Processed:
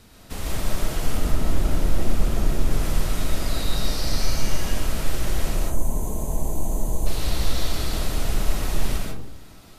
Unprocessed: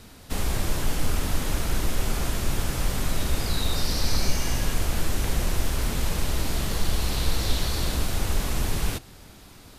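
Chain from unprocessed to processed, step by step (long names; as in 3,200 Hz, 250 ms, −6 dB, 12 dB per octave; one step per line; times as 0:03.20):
0:01.17–0:02.71: tilt shelving filter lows +4 dB, about 780 Hz
0:05.55–0:07.07: gain on a spectral selection 1,100–6,000 Hz −18 dB
comb and all-pass reverb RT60 0.72 s, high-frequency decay 0.3×, pre-delay 90 ms, DRR −2 dB
level −4 dB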